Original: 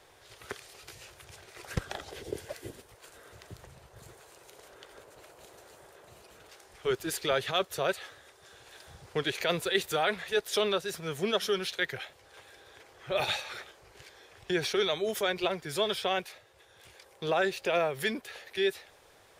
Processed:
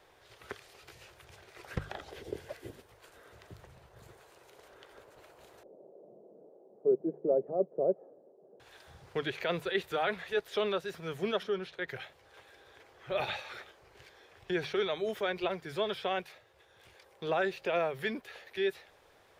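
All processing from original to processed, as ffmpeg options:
-filter_complex "[0:a]asettb=1/sr,asplit=3[s0][s1][s2];[s0]atrim=end=5.634[s3];[s1]atrim=start=5.63:end=8.6,asetpts=PTS-STARTPTS,afade=t=in:d=0.004:c=qsin,afade=t=out:st=2.966:d=0.004:c=qsin,acontrast=48,asuperpass=centerf=330:order=8:qfactor=0.72[s4];[s2]atrim=start=8.596[s5];[s3][s4]acrossfade=d=0.004:c1=hsin:c2=qsin[s6];[s6][s5]acrossfade=d=0.004:c1=qsin:c2=hsin,asettb=1/sr,asplit=3[s7][s8][s9];[s7]atrim=end=11.434[s10];[s8]atrim=start=11.43:end=11.88,asetpts=PTS-STARTPTS,afade=t=in:d=0.004:c=qsin,afade=t=out:st=0.446:d=0.004:c=qsin,lowpass=11000,highshelf=f=2300:g=-12[s11];[s9]atrim=start=11.876[s12];[s10][s11]acrossfade=d=0.004:c1=hsin:c2=qsin[s13];[s13][s12]acrossfade=d=0.004:c1=qsin:c2=hsin,bandreject=f=50:t=h:w=6,bandreject=f=100:t=h:w=6,bandreject=f=150:t=h:w=6,acrossover=split=3700[s14][s15];[s15]acompressor=threshold=0.00501:ratio=4:attack=1:release=60[s16];[s14][s16]amix=inputs=2:normalize=0,equalizer=f=8900:w=0.56:g=-7.5,volume=0.75"

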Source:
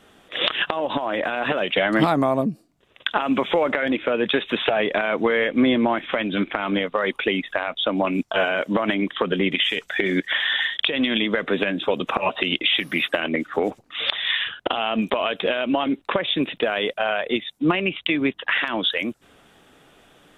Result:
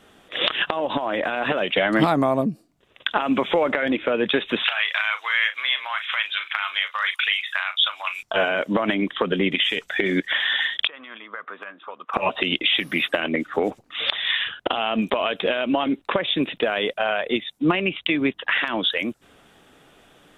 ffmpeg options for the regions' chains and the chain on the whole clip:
-filter_complex "[0:a]asettb=1/sr,asplit=3[s0][s1][s2];[s0]atrim=end=4.644[s3];[s1]atrim=start=4.64:end=8.23,asetpts=PTS-STARTPTS,afade=t=in:d=0.004:c=qsin,afade=t=out:st=3.586:d=0.004:c=qsin,highpass=f=1100:w=0.5412,highpass=f=1100:w=1.3066,highshelf=f=2500:g=9.5,asplit=2[s4][s5];[s5]adelay=38,volume=0.299[s6];[s4][s6]amix=inputs=2:normalize=0,atrim=end_sample=158319[s7];[s2]atrim=start=8.226[s8];[s3][s7]acrossfade=d=0.004:c1=hsin:c2=qsin[s9];[s9][s8]acrossfade=d=0.004:c1=qsin:c2=hsin,asettb=1/sr,asplit=3[s10][s11][s12];[s10]atrim=end=10.874[s13];[s11]atrim=start=10.87:end=12.14,asetpts=PTS-STARTPTS,afade=t=in:d=0.004:c=qsin,afade=t=out:st=1.266:d=0.004:c=qsin,bandpass=f=1200:t=q:w=4.4,asoftclip=type=hard:threshold=0.1[s14];[s12]atrim=start=12.136[s15];[s13][s14]acrossfade=d=0.004:c1=hsin:c2=qsin[s16];[s16][s15]acrossfade=d=0.004:c1=qsin:c2=hsin"

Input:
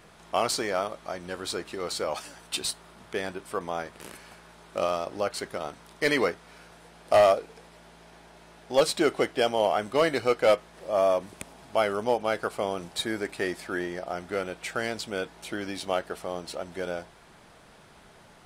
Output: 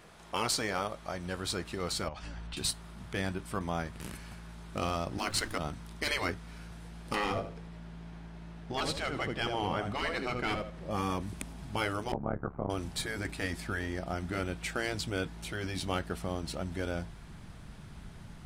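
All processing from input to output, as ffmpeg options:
-filter_complex "[0:a]asettb=1/sr,asplit=3[s0][s1][s2];[s0]atrim=end=2.084[s3];[s1]atrim=start=2.08:end=2.57,asetpts=PTS-STARTPTS,afade=t=in:d=0.004:c=qsin,afade=t=out:st=0.486:d=0.004:c=qsin,lowpass=4100,acompressor=threshold=0.0112:ratio=4:attack=3.2:release=140:knee=1:detection=peak,lowshelf=f=110:g=10[s4];[s2]atrim=start=2.566[s5];[s3][s4]acrossfade=d=0.004:c1=hsin:c2=qsin[s6];[s6][s5]acrossfade=d=0.004:c1=qsin:c2=hsin,asettb=1/sr,asplit=3[s7][s8][s9];[s7]atrim=end=5.184[s10];[s8]atrim=start=5.18:end=5.58,asetpts=PTS-STARTPTS,afade=t=in:d=0.004:c=qsin,afade=t=out:st=0.396:d=0.004:c=qsin,afreqshift=-67,acontrast=67,aeval=exprs='sgn(val(0))*max(abs(val(0))-0.00299,0)':c=same[s11];[s9]atrim=start=5.576[s12];[s10][s11]acrossfade=d=0.004:c1=hsin:c2=qsin[s13];[s13][s12]acrossfade=d=0.004:c1=qsin:c2=hsin,asettb=1/sr,asplit=3[s14][s15][s16];[s14]atrim=end=7.154[s17];[s15]atrim=start=7.15:end=10.91,asetpts=PTS-STARTPTS,afade=t=in:d=0.004:c=qsin,afade=t=out:st=3.756:d=0.004:c=qsin,lowpass=f=3000:p=1,aecho=1:1:78|156|234:0.316|0.0791|0.0198,atrim=end_sample=165816[s18];[s16]atrim=start=10.906[s19];[s17][s18]acrossfade=d=0.004:c1=hsin:c2=qsin[s20];[s20][s19]acrossfade=d=0.004:c1=qsin:c2=hsin,asettb=1/sr,asplit=3[s21][s22][s23];[s21]atrim=end=12.124[s24];[s22]atrim=start=12.12:end=12.7,asetpts=PTS-STARTPTS,afade=t=in:d=0.004:c=qsin,afade=t=out:st=0.576:d=0.004:c=qsin,lowpass=f=1300:w=0.5412,lowpass=f=1300:w=1.3066,asoftclip=type=hard:threshold=0.168,tremolo=f=70:d=0.947[s25];[s23]atrim=start=12.696[s26];[s24][s25]acrossfade=d=0.004:c1=hsin:c2=qsin[s27];[s27][s26]acrossfade=d=0.004:c1=qsin:c2=hsin,asubboost=boost=7.5:cutoff=180,afftfilt=real='re*lt(hypot(re,im),0.224)':imag='im*lt(hypot(re,im),0.224)':win_size=1024:overlap=0.75,volume=0.841"

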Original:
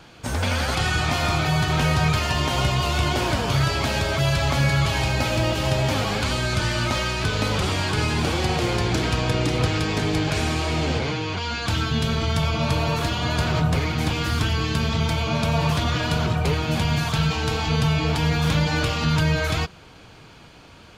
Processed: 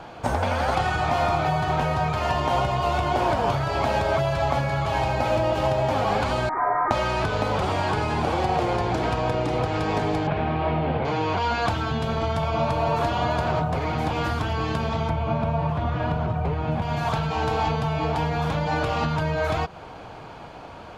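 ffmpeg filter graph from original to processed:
-filter_complex "[0:a]asettb=1/sr,asplit=3[s0][s1][s2];[s0]atrim=end=6.494[s3];[s1]atrim=start=6.49:end=6.91,asetpts=PTS-STARTPTS,afade=t=in:d=0.004:c=qsin,afade=t=out:st=0.416:d=0.004:c=qsin,highpass=1000,lowpass=f=2100:t=q:w=0.5098,lowpass=f=2100:t=q:w=0.6013,lowpass=f=2100:t=q:w=0.9,lowpass=f=2100:t=q:w=2.563,afreqshift=-2500[s4];[s2]atrim=start=6.906[s5];[s3][s4]acrossfade=d=0.004:c1=hsin:c2=qsin[s6];[s6][s5]acrossfade=d=0.004:c1=qsin:c2=hsin,asettb=1/sr,asplit=3[s7][s8][s9];[s7]atrim=end=10.274[s10];[s8]atrim=start=10.27:end=11.05,asetpts=PTS-STARTPTS,afade=t=in:d=0.004:c=qsin,afade=t=out:st=0.776:d=0.004:c=qsin,lowpass=f=3300:w=0.5412,lowpass=f=3300:w=1.3066,equalizer=f=170:t=o:w=0.75:g=7.5[s11];[s9]atrim=start=11.046[s12];[s10][s11]acrossfade=d=0.004:c1=hsin:c2=qsin[s13];[s13][s12]acrossfade=d=0.004:c1=qsin:c2=hsin,asettb=1/sr,asplit=3[s14][s15][s16];[s14]atrim=end=15.094[s17];[s15]atrim=start=15.09:end=16.82,asetpts=PTS-STARTPTS,afade=t=in:d=0.004:c=qsin,afade=t=out:st=1.726:d=0.004:c=qsin,acrossover=split=3300[s18][s19];[s19]acompressor=threshold=0.00794:ratio=4:attack=1:release=60[s20];[s18][s20]amix=inputs=2:normalize=0,bass=f=250:g=7,treble=f=4000:g=-3[s21];[s16]atrim=start=16.816[s22];[s17][s21]acrossfade=d=0.004:c1=hsin:c2=qsin[s23];[s23][s22]acrossfade=d=0.004:c1=qsin:c2=hsin,highshelf=f=3100:g=-8.5,acompressor=threshold=0.0447:ratio=6,equalizer=f=760:t=o:w=1.4:g=11.5,volume=1.33"

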